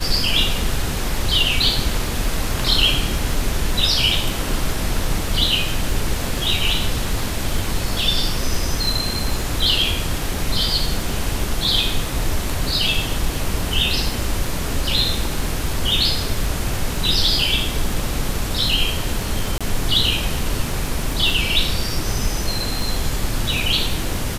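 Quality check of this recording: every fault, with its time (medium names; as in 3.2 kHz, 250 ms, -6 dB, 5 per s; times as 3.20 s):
crackle 51 per s -27 dBFS
19.58–19.61 s: dropout 26 ms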